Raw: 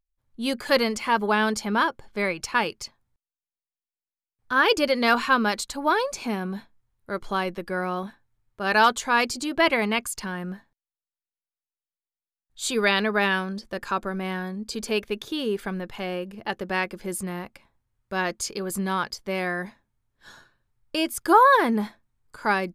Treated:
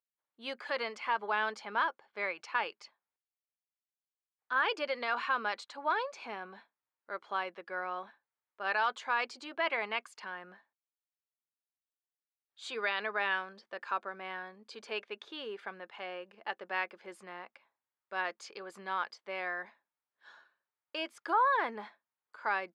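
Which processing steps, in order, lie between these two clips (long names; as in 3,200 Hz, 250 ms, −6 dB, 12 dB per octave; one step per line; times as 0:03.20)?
brickwall limiter −12.5 dBFS, peak gain reduction 5.5 dB
band-pass filter 630–3,000 Hz
level −6.5 dB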